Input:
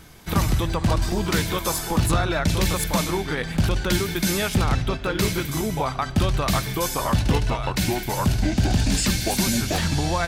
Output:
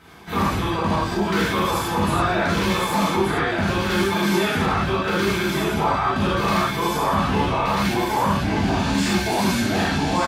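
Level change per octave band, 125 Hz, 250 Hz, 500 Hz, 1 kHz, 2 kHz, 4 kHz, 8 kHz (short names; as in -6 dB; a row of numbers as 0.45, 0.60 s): -2.5, +3.0, +3.5, +6.5, +5.0, +0.5, -5.5 dB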